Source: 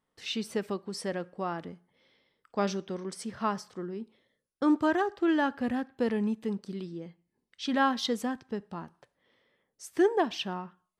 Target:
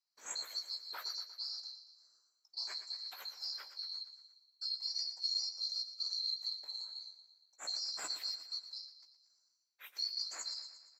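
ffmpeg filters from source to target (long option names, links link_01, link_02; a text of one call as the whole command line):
ffmpeg -i in.wav -filter_complex "[0:a]afftfilt=real='real(if(lt(b,736),b+184*(1-2*mod(floor(b/184),2)),b),0)':imag='imag(if(lt(b,736),b+184*(1-2*mod(floor(b/184),2)),b),0)':win_size=2048:overlap=0.75,highpass=630,highshelf=frequency=3500:gain=-6.5,alimiter=level_in=2dB:limit=-24dB:level=0:latency=1:release=105,volume=-2dB,afftfilt=real='hypot(re,im)*cos(2*PI*random(0))':imag='hypot(re,im)*sin(2*PI*random(1))':win_size=512:overlap=0.75,asplit=2[link_01][link_02];[link_02]adelay=16,volume=-7dB[link_03];[link_01][link_03]amix=inputs=2:normalize=0,aecho=1:1:117|234|351|468|585|702:0.251|0.143|0.0816|0.0465|0.0265|0.0151,volume=1dB" out.wav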